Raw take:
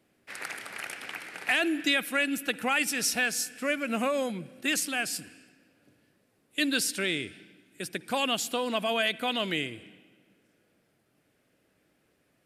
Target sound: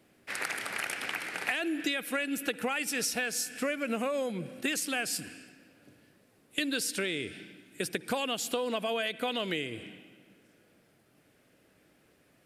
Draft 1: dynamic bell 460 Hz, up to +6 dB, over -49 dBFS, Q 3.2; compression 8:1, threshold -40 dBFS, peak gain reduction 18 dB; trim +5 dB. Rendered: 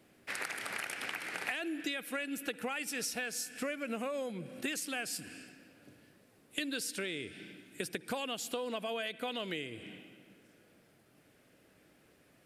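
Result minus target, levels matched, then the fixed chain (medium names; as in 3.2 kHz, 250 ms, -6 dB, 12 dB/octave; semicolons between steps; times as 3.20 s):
compression: peak gain reduction +5.5 dB
dynamic bell 460 Hz, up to +6 dB, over -49 dBFS, Q 3.2; compression 8:1, threshold -33.5 dBFS, peak gain reduction 12.5 dB; trim +5 dB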